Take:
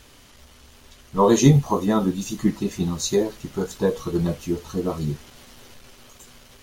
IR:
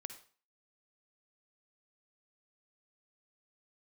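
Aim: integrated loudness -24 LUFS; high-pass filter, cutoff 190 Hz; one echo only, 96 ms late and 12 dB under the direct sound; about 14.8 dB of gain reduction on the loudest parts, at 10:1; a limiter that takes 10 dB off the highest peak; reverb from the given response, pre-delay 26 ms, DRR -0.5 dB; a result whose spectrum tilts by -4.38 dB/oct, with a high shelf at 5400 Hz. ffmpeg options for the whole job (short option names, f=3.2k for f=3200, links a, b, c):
-filter_complex "[0:a]highpass=190,highshelf=f=5.4k:g=4.5,acompressor=threshold=-27dB:ratio=10,alimiter=level_in=2.5dB:limit=-24dB:level=0:latency=1,volume=-2.5dB,aecho=1:1:96:0.251,asplit=2[a][b];[1:a]atrim=start_sample=2205,adelay=26[c];[b][c]afir=irnorm=-1:irlink=0,volume=4dB[d];[a][d]amix=inputs=2:normalize=0,volume=10dB"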